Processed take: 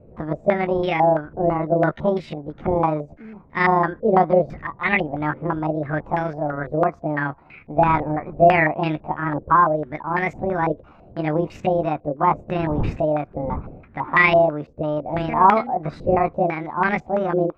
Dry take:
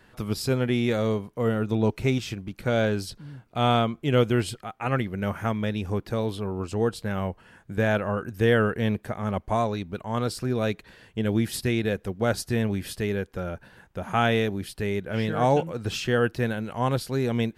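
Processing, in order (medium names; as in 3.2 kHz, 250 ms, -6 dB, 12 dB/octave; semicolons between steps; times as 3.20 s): rotating-head pitch shifter +7 st; wind noise 180 Hz -41 dBFS; step-sequenced low-pass 6 Hz 510–2200 Hz; trim +2.5 dB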